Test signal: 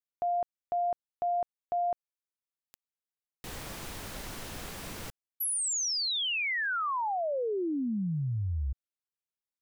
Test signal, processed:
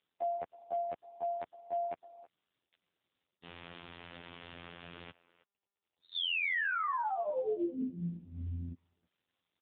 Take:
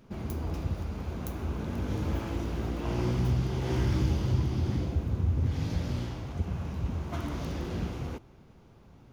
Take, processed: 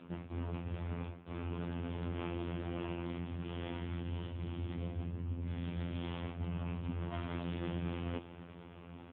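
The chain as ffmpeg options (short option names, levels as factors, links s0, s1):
-filter_complex "[0:a]aemphasis=mode=production:type=75fm,areverse,acompressor=threshold=0.0126:ratio=16:attack=1.1:release=300:knee=6:detection=peak,areverse,asplit=2[s0][s1];[s1]adelay=320,highpass=300,lowpass=3400,asoftclip=type=hard:threshold=0.0211,volume=0.126[s2];[s0][s2]amix=inputs=2:normalize=0,afftfilt=real='hypot(re,im)*cos(PI*b)':imag='0':win_size=2048:overlap=0.75,volume=3.76" -ar 8000 -c:a libopencore_amrnb -b:a 7400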